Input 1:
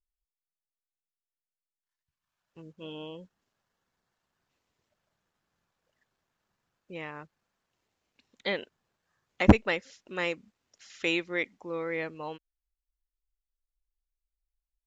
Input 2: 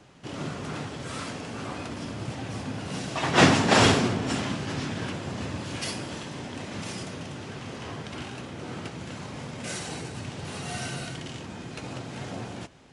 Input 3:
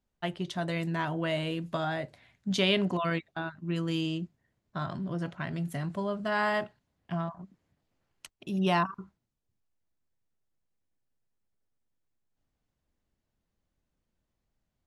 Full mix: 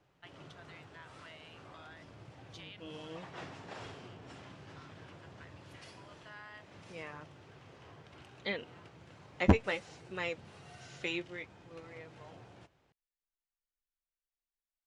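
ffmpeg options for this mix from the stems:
ffmpeg -i stem1.wav -i stem2.wav -i stem3.wav -filter_complex "[0:a]flanger=delay=4.2:depth=7.1:regen=40:speed=0.58:shape=sinusoidal,volume=-2dB,afade=type=out:start_time=10.97:duration=0.54:silence=0.251189,asplit=2[link_01][link_02];[1:a]equalizer=frequency=230:width_type=o:width=0.57:gain=-9.5,volume=-15.5dB[link_03];[2:a]highpass=1400,volume=-11.5dB[link_04];[link_02]apad=whole_len=655600[link_05];[link_04][link_05]sidechaincompress=threshold=-52dB:ratio=8:attack=16:release=1330[link_06];[link_03][link_06]amix=inputs=2:normalize=0,aemphasis=mode=reproduction:type=50kf,acompressor=threshold=-49dB:ratio=2.5,volume=0dB[link_07];[link_01][link_07]amix=inputs=2:normalize=0" out.wav

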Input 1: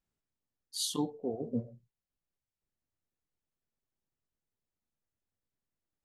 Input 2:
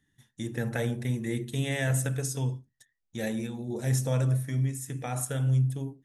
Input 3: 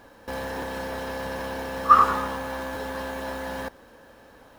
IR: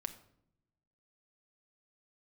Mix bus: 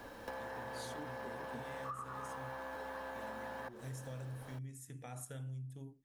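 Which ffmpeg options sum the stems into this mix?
-filter_complex "[0:a]volume=-6.5dB[link_01];[1:a]volume=-14dB[link_02];[2:a]acrossover=split=180|510|2000[link_03][link_04][link_05][link_06];[link_03]acompressor=threshold=-54dB:ratio=4[link_07];[link_04]acompressor=threshold=-48dB:ratio=4[link_08];[link_05]acompressor=threshold=-31dB:ratio=4[link_09];[link_06]acompressor=threshold=-53dB:ratio=4[link_10];[link_07][link_08][link_09][link_10]amix=inputs=4:normalize=0,volume=0dB[link_11];[link_01][link_02][link_11]amix=inputs=3:normalize=0,acompressor=threshold=-42dB:ratio=6"

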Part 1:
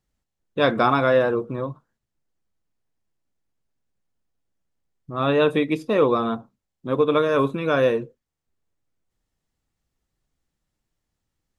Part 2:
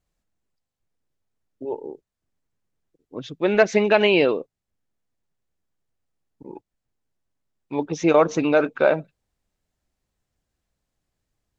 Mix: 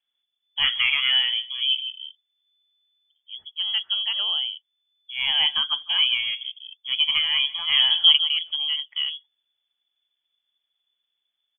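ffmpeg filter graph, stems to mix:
ffmpeg -i stem1.wav -i stem2.wav -filter_complex "[0:a]volume=-3dB,asplit=3[link_01][link_02][link_03];[link_02]volume=-21dB[link_04];[1:a]tiltshelf=frequency=680:gain=9,dynaudnorm=framelen=490:gausssize=5:maxgain=6dB,volume=-3.5dB,asplit=2[link_05][link_06];[link_06]volume=-9.5dB[link_07];[link_03]apad=whole_len=510765[link_08];[link_05][link_08]sidechaingate=range=-56dB:threshold=-45dB:ratio=16:detection=peak[link_09];[link_04][link_07]amix=inputs=2:normalize=0,aecho=0:1:155:1[link_10];[link_01][link_09][link_10]amix=inputs=3:normalize=0,lowpass=frequency=3000:width_type=q:width=0.5098,lowpass=frequency=3000:width_type=q:width=0.6013,lowpass=frequency=3000:width_type=q:width=0.9,lowpass=frequency=3000:width_type=q:width=2.563,afreqshift=-3500" out.wav

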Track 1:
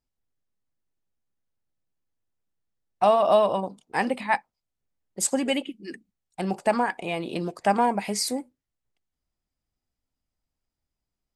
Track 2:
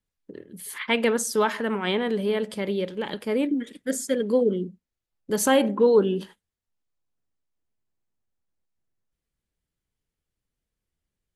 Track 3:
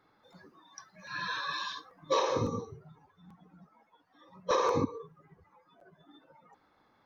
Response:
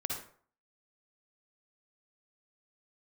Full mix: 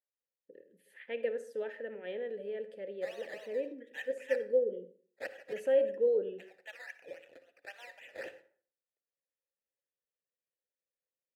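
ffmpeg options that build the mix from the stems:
-filter_complex "[0:a]highpass=frequency=1100:width=0.5412,highpass=frequency=1100:width=1.3066,acrusher=samples=12:mix=1:aa=0.000001:lfo=1:lforange=7.2:lforate=3.7,volume=-5dB,asplit=3[link_01][link_02][link_03];[link_02]volume=-11dB[link_04];[1:a]equalizer=frequency=5200:width=0.33:gain=-8.5,adelay=200,volume=-4.5dB,asplit=2[link_05][link_06];[link_06]volume=-12dB[link_07];[2:a]acompressor=threshold=-46dB:ratio=2,adelay=1500,volume=-12dB[link_08];[link_03]apad=whole_len=377363[link_09];[link_08][link_09]sidechaingate=range=-33dB:threshold=-54dB:ratio=16:detection=peak[link_10];[3:a]atrim=start_sample=2205[link_11];[link_04][link_07]amix=inputs=2:normalize=0[link_12];[link_12][link_11]afir=irnorm=-1:irlink=0[link_13];[link_01][link_05][link_10][link_13]amix=inputs=4:normalize=0,asplit=3[link_14][link_15][link_16];[link_14]bandpass=frequency=530:width_type=q:width=8,volume=0dB[link_17];[link_15]bandpass=frequency=1840:width_type=q:width=8,volume=-6dB[link_18];[link_16]bandpass=frequency=2480:width_type=q:width=8,volume=-9dB[link_19];[link_17][link_18][link_19]amix=inputs=3:normalize=0,highshelf=frequency=8500:gain=11.5"

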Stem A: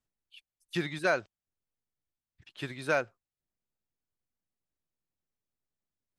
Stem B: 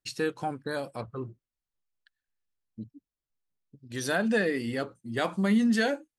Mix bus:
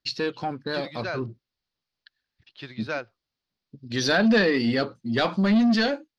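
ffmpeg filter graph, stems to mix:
ffmpeg -i stem1.wav -i stem2.wav -filter_complex "[0:a]volume=-7.5dB[link_01];[1:a]highpass=48,equalizer=frequency=230:width=6.9:gain=4,asoftclip=type=tanh:threshold=-21dB,volume=3dB[link_02];[link_01][link_02]amix=inputs=2:normalize=0,highshelf=frequency=6500:width_type=q:width=3:gain=-12.5,dynaudnorm=framelen=340:gausssize=7:maxgain=4.5dB" out.wav

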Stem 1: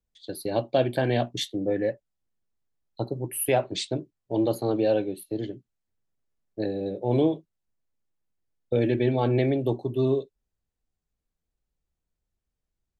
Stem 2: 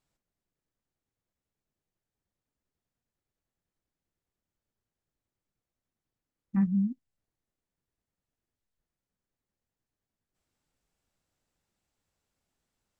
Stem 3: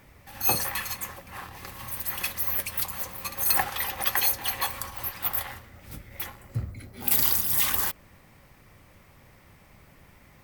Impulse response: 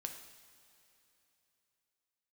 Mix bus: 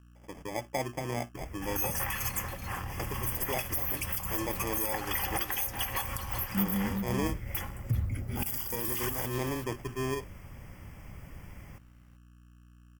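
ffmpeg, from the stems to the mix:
-filter_complex "[0:a]aeval=exprs='val(0)+0.00562*(sin(2*PI*60*n/s)+sin(2*PI*2*60*n/s)/2+sin(2*PI*3*60*n/s)/3+sin(2*PI*4*60*n/s)/4+sin(2*PI*5*60*n/s)/5)':channel_layout=same,acrusher=samples=31:mix=1:aa=0.000001,volume=-9.5dB[link_01];[1:a]volume=-5dB,asplit=2[link_02][link_03];[link_03]volume=-4.5dB[link_04];[2:a]acompressor=threshold=-28dB:ratio=3,lowshelf=frequency=170:gain=10.5,adelay=1350,volume=1.5dB,asplit=2[link_05][link_06];[link_06]volume=-17dB[link_07];[link_01][link_05]amix=inputs=2:normalize=0,asuperstop=centerf=4000:order=20:qfactor=3.3,alimiter=limit=-20dB:level=0:latency=1:release=162,volume=0dB[link_08];[link_04][link_07]amix=inputs=2:normalize=0,aecho=0:1:382:1[link_09];[link_02][link_08][link_09]amix=inputs=3:normalize=0"

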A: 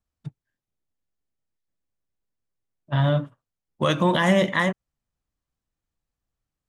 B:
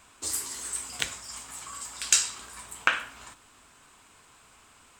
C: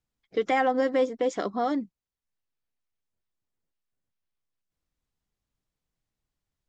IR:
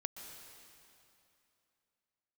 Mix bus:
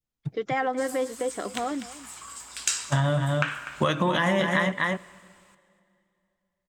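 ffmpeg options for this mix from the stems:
-filter_complex "[0:a]agate=range=-33dB:threshold=-45dB:ratio=3:detection=peak,volume=2.5dB,asplit=3[link_01][link_02][link_03];[link_02]volume=-19.5dB[link_04];[link_03]volume=-5.5dB[link_05];[1:a]dynaudnorm=framelen=100:gausssize=11:maxgain=5.5dB,adelay=550,volume=-6.5dB,asplit=3[link_06][link_07][link_08];[link_07]volume=-8dB[link_09];[link_08]volume=-15dB[link_10];[2:a]volume=-4dB,asplit=3[link_11][link_12][link_13];[link_12]volume=-17dB[link_14];[link_13]apad=whole_len=244654[link_15];[link_06][link_15]sidechaincompress=threshold=-37dB:ratio=8:attack=6.7:release=324[link_16];[3:a]atrim=start_sample=2205[link_17];[link_04][link_09]amix=inputs=2:normalize=0[link_18];[link_18][link_17]afir=irnorm=-1:irlink=0[link_19];[link_05][link_10][link_14]amix=inputs=3:normalize=0,aecho=0:1:247:1[link_20];[link_01][link_16][link_11][link_19][link_20]amix=inputs=5:normalize=0,adynamicequalizer=threshold=0.02:dfrequency=1500:dqfactor=0.8:tfrequency=1500:tqfactor=0.8:attack=5:release=100:ratio=0.375:range=2:mode=boostabove:tftype=bell,acompressor=threshold=-20dB:ratio=6"

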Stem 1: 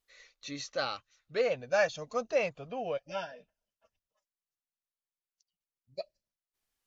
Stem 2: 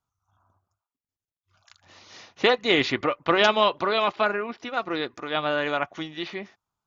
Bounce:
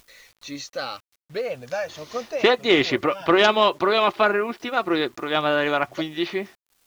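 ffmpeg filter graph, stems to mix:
ffmpeg -i stem1.wav -i stem2.wav -filter_complex "[0:a]acompressor=mode=upward:threshold=-49dB:ratio=2.5,aphaser=in_gain=1:out_gain=1:delay=4.1:decay=0.24:speed=0.67:type=sinusoidal,acompressor=threshold=-29dB:ratio=6,volume=-1.5dB[link_01];[1:a]equalizer=frequency=360:width_type=o:width=0.3:gain=6,dynaudnorm=framelen=100:gausssize=7:maxgain=5.5dB,volume=-7dB,asplit=2[link_02][link_03];[link_03]apad=whole_len=302782[link_04];[link_01][link_04]sidechaincompress=threshold=-33dB:ratio=8:attack=23:release=245[link_05];[link_05][link_02]amix=inputs=2:normalize=0,acontrast=58,acrusher=bits=8:mix=0:aa=0.000001" out.wav

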